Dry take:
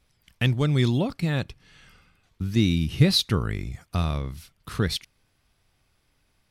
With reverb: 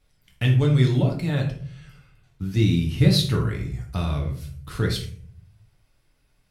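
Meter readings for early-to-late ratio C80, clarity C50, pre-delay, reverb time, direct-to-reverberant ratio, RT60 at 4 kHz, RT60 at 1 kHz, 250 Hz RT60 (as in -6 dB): 12.0 dB, 7.5 dB, 4 ms, 0.55 s, -0.5 dB, 0.35 s, 0.45 s, 0.85 s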